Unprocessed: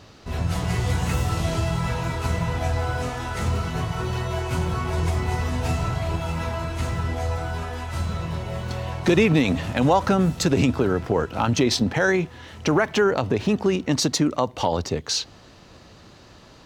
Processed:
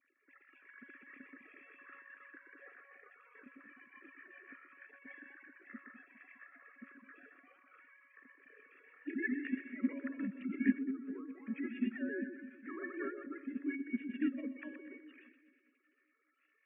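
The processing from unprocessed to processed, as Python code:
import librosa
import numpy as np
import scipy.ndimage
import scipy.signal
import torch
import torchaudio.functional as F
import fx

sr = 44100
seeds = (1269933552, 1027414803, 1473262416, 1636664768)

p1 = fx.sine_speech(x, sr)
p2 = fx.vowel_filter(p1, sr, vowel='i')
p3 = fx.notch(p2, sr, hz=660.0, q=12.0)
p4 = fx.comb_fb(p3, sr, f0_hz=560.0, decay_s=0.55, harmonics='all', damping=0.0, mix_pct=90)
p5 = p4 + fx.echo_split(p4, sr, split_hz=320.0, low_ms=203, high_ms=124, feedback_pct=52, wet_db=-9.0, dry=0)
p6 = fx.formant_shift(p5, sr, semitones=-4)
y = F.gain(torch.from_numpy(p6), 11.5).numpy()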